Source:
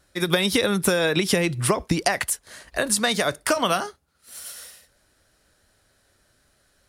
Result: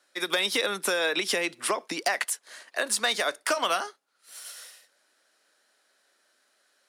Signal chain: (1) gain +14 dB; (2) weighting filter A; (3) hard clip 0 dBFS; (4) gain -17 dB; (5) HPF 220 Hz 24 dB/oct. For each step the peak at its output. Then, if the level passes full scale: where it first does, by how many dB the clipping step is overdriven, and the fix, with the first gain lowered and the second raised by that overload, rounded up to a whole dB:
+9.0, +9.0, 0.0, -17.0, -13.0 dBFS; step 1, 9.0 dB; step 1 +5 dB, step 4 -8 dB

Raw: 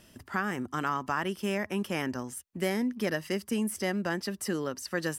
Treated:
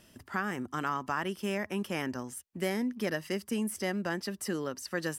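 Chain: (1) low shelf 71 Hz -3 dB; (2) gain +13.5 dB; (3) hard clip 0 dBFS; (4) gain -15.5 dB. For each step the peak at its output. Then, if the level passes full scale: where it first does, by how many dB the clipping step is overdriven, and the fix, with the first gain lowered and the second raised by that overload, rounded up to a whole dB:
-15.5, -2.0, -2.0, -17.5 dBFS; no overload

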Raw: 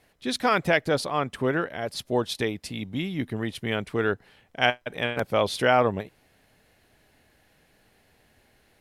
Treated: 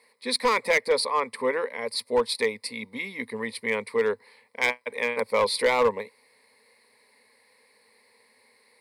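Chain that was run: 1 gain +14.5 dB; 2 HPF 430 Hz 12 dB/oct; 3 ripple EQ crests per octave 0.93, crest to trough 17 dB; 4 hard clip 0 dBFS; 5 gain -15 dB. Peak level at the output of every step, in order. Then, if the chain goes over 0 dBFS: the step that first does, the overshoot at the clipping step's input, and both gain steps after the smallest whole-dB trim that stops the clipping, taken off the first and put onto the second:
+9.5, +9.5, +9.5, 0.0, -15.0 dBFS; step 1, 9.5 dB; step 1 +4.5 dB, step 5 -5 dB

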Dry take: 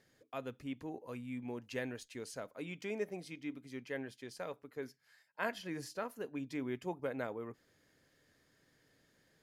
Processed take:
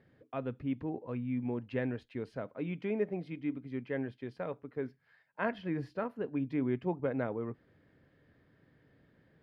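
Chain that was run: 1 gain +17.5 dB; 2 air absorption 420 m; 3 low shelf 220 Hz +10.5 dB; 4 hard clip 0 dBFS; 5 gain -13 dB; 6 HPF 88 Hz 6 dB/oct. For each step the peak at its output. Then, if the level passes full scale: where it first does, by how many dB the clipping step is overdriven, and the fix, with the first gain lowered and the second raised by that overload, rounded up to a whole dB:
-3.5, -6.5, -6.0, -6.0, -19.0, -19.5 dBFS; no overload

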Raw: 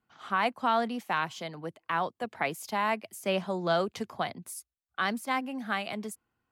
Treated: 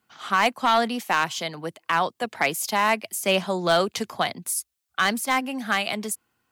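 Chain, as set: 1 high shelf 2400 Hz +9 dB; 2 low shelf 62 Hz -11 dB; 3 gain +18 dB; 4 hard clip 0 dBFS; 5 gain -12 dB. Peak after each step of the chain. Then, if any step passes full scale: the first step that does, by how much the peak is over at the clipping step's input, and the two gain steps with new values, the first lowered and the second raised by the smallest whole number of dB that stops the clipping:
-11.5, -11.5, +6.5, 0.0, -12.0 dBFS; step 3, 6.5 dB; step 3 +11 dB, step 5 -5 dB

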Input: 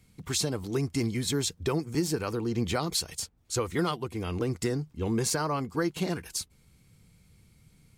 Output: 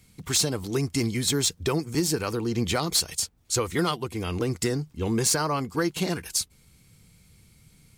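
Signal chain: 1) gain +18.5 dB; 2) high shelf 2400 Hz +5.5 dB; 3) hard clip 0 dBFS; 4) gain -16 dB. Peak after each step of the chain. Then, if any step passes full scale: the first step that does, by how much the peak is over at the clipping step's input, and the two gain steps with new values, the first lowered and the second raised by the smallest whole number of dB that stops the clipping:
+3.5, +7.0, 0.0, -16.0 dBFS; step 1, 7.0 dB; step 1 +11.5 dB, step 4 -9 dB

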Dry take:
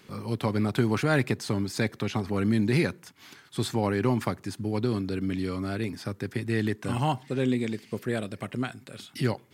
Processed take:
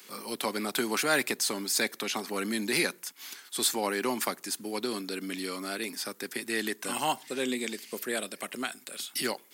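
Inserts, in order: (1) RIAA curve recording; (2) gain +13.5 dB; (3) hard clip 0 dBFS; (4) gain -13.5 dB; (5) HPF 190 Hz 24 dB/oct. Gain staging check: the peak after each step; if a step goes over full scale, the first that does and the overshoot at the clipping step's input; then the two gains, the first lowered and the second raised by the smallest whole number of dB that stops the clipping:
-10.5, +3.0, 0.0, -13.5, -13.0 dBFS; step 2, 3.0 dB; step 2 +10.5 dB, step 4 -10.5 dB

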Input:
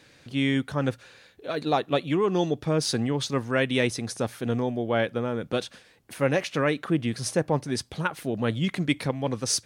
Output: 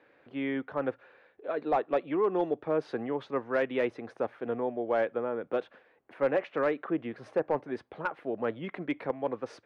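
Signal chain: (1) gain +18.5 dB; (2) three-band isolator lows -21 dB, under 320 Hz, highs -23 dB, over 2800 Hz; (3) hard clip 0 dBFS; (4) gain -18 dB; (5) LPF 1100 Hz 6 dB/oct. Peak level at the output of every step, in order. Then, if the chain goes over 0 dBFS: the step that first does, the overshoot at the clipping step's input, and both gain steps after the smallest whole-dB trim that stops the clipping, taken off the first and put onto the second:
+9.0, +7.5, 0.0, -18.0, -18.0 dBFS; step 1, 7.5 dB; step 1 +10.5 dB, step 4 -10 dB

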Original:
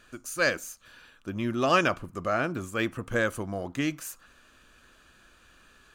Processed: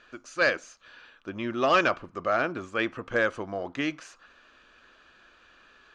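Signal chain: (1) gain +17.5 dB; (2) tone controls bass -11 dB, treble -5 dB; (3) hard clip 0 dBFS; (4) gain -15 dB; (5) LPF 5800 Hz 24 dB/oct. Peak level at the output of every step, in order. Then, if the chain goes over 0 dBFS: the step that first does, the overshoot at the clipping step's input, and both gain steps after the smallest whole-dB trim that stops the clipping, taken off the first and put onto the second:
+8.5, +6.5, 0.0, -15.0, -13.5 dBFS; step 1, 6.5 dB; step 1 +10.5 dB, step 4 -8 dB

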